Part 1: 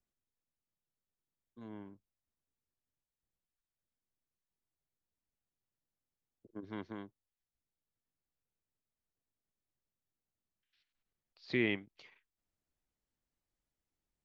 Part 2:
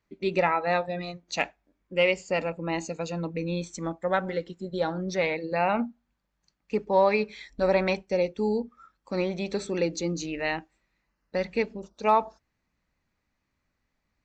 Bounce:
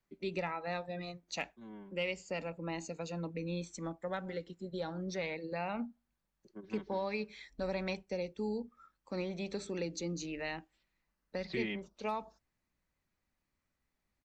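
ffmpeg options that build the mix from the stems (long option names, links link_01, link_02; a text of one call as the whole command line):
ffmpeg -i stem1.wav -i stem2.wav -filter_complex "[0:a]aecho=1:1:5.3:0.84,volume=-4dB[link_01];[1:a]volume=-7.5dB[link_02];[link_01][link_02]amix=inputs=2:normalize=0,acrossover=split=220|3000[link_03][link_04][link_05];[link_04]acompressor=threshold=-38dB:ratio=2.5[link_06];[link_03][link_06][link_05]amix=inputs=3:normalize=0" out.wav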